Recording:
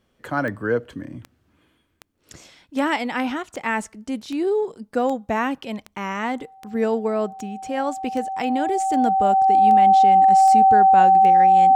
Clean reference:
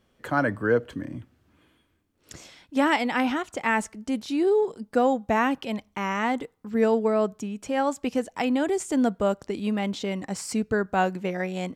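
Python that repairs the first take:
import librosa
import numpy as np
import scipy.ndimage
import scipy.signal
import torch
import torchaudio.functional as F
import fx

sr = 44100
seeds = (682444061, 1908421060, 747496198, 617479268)

y = fx.fix_declick_ar(x, sr, threshold=10.0)
y = fx.notch(y, sr, hz=770.0, q=30.0)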